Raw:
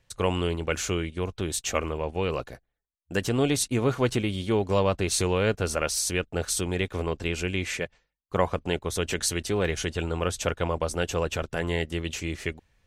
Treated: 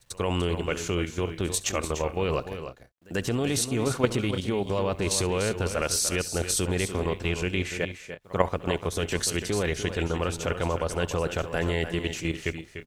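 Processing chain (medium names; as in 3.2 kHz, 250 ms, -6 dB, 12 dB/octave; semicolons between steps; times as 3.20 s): level held to a coarse grid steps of 10 dB; pre-echo 91 ms -24 dB; bit crusher 12-bit; on a send: multi-tap echo 68/295/326 ms -20/-10/-18.5 dB; on the sum: trim +4 dB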